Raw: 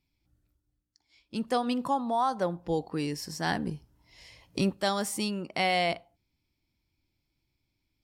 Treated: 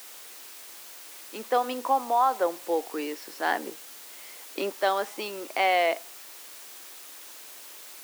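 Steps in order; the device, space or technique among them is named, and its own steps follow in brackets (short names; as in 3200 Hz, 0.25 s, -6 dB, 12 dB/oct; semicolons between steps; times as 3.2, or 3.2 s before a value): wax cylinder (BPF 370–2500 Hz; wow and flutter; white noise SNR 15 dB); HPF 280 Hz 24 dB/oct; gain +5 dB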